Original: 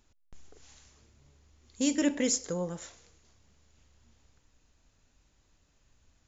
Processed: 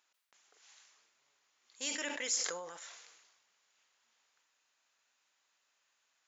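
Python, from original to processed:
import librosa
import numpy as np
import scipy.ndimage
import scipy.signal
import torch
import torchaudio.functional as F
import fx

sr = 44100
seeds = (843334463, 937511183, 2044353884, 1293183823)

y = scipy.signal.sosfilt(scipy.signal.butter(2, 1100.0, 'highpass', fs=sr, output='sos'), x)
y = fx.high_shelf(y, sr, hz=5200.0, db=-7.5)
y = fx.sustainer(y, sr, db_per_s=45.0)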